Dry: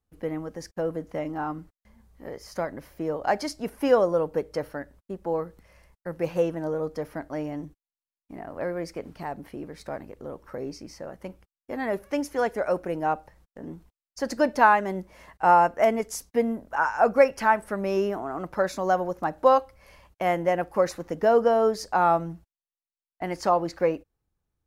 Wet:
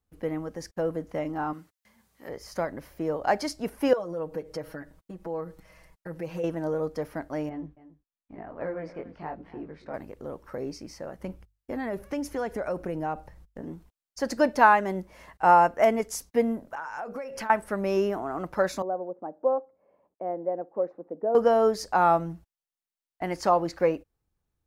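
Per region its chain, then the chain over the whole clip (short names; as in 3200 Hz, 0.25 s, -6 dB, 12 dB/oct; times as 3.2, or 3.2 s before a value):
1.53–2.29 HPF 120 Hz + tilt shelf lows -6 dB, about 1100 Hz
3.93–6.44 compressor 2.5:1, threshold -39 dBFS + comb 6.3 ms, depth 90%
7.49–9.94 LPF 2700 Hz + chorus 1 Hz, delay 16 ms, depth 7.8 ms + echo 0.276 s -16.5 dB
11.19–13.61 low shelf 230 Hz +8.5 dB + notches 50/100 Hz + compressor 3:1, threshold -28 dBFS
16.59–17.5 notches 60/120/180/240/300/360/420/480/540/600 Hz + compressor 20:1, threshold -31 dBFS
18.82–21.35 Butterworth band-pass 350 Hz, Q 0.84 + low shelf 400 Hz -10 dB
whole clip: dry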